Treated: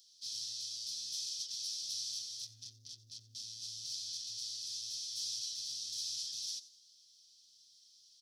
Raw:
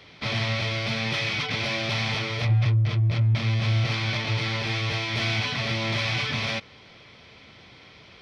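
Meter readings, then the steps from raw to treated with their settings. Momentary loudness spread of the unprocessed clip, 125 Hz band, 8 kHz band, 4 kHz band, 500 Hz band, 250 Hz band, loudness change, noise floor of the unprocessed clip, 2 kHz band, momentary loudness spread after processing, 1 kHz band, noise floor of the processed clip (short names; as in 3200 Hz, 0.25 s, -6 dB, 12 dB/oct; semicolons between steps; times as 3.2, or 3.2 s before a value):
4 LU, under -40 dB, n/a, -10.0 dB, under -40 dB, under -40 dB, -14.0 dB, -50 dBFS, under -40 dB, 10 LU, under -40 dB, -64 dBFS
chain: inverse Chebyshev high-pass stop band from 2400 Hz, stop band 50 dB; frequency-shifting echo 89 ms, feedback 37%, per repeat +140 Hz, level -17 dB; gain +6.5 dB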